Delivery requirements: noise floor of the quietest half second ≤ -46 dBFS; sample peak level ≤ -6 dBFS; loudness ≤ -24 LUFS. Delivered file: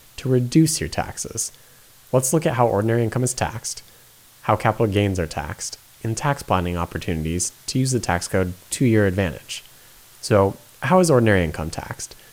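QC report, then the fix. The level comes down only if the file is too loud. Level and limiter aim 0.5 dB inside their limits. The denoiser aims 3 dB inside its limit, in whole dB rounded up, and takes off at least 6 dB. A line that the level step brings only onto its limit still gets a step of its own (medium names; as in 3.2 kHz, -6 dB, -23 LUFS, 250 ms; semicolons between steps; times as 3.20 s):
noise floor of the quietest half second -50 dBFS: pass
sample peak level -4.0 dBFS: fail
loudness -21.5 LUFS: fail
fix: trim -3 dB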